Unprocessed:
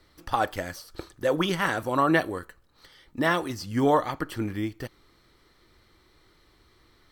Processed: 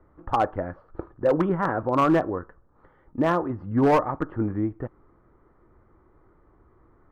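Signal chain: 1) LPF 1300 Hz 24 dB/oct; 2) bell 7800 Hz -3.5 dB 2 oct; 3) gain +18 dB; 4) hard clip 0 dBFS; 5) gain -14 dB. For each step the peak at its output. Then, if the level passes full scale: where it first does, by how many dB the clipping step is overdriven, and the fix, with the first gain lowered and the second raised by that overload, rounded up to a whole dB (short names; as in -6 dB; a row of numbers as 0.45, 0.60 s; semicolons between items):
-11.0, -11.0, +7.0, 0.0, -14.0 dBFS; step 3, 7.0 dB; step 3 +11 dB, step 5 -7 dB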